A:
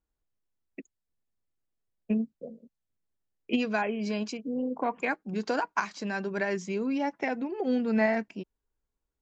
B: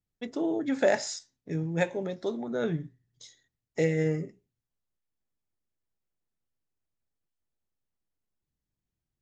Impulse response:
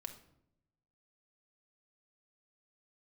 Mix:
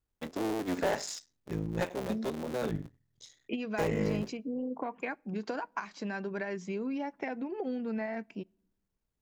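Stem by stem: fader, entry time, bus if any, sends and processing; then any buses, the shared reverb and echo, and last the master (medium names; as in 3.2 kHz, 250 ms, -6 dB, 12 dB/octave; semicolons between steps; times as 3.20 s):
-2.0 dB, 0.00 s, send -19 dB, treble shelf 5.2 kHz -9 dB; compression 10:1, threshold -30 dBFS, peak gain reduction 10.5 dB
-1.0 dB, 0.00 s, no send, cycle switcher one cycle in 3, muted; saturation -21.5 dBFS, distortion -14 dB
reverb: on, RT60 0.80 s, pre-delay 4 ms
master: none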